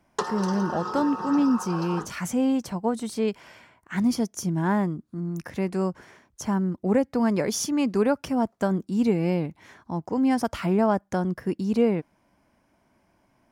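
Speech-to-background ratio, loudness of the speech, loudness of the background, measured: 7.0 dB, -26.0 LUFS, -33.0 LUFS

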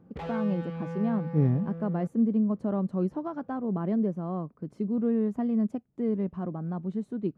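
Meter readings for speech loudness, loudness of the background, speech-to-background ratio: -29.5 LUFS, -38.0 LUFS, 8.5 dB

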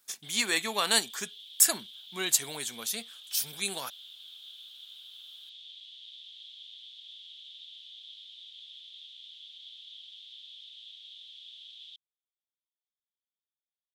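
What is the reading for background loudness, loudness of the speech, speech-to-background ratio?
-46.0 LUFS, -28.0 LUFS, 18.0 dB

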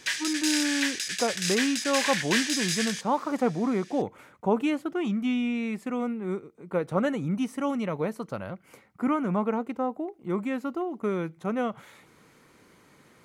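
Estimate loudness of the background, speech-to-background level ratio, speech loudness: -27.5 LUFS, -2.0 dB, -29.5 LUFS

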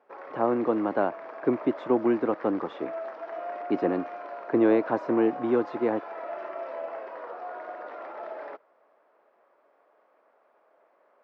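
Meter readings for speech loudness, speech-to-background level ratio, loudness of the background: -27.0 LUFS, 12.0 dB, -39.0 LUFS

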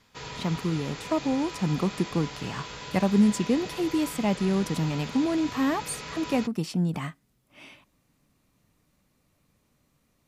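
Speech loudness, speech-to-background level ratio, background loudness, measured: -27.5 LUFS, 11.0 dB, -38.5 LUFS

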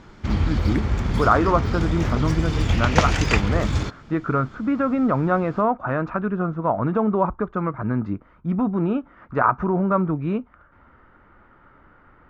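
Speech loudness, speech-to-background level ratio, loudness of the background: -23.5 LUFS, 0.0 dB, -23.5 LUFS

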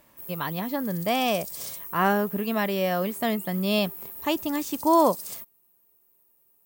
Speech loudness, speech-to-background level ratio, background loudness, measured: -26.0 LUFS, 10.0 dB, -36.0 LUFS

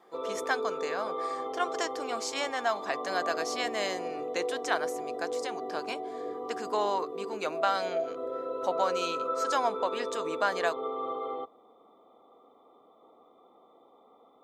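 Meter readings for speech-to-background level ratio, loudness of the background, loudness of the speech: 2.0 dB, -35.5 LUFS, -33.5 LUFS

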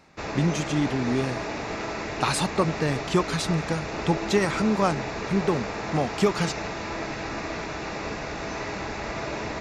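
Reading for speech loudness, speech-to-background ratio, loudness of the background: -26.5 LUFS, 5.5 dB, -32.0 LUFS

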